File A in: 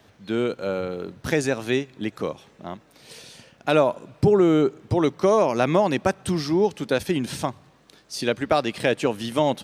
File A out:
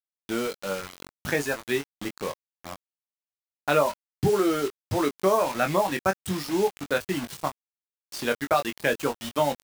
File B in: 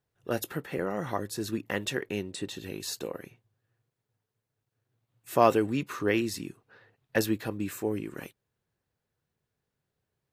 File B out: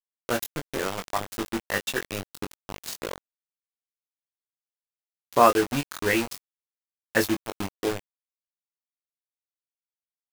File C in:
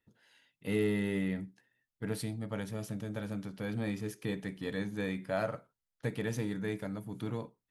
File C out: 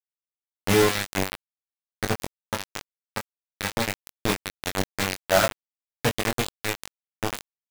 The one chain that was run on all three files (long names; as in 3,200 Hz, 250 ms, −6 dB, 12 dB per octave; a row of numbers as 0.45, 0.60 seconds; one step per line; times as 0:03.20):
reverb reduction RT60 1.4 s
dynamic equaliser 1,400 Hz, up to +7 dB, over −40 dBFS, Q 0.97
bit reduction 5 bits
double-tracking delay 21 ms −6 dB
loudness normalisation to −27 LKFS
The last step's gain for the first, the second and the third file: −5.5, +1.0, +10.0 decibels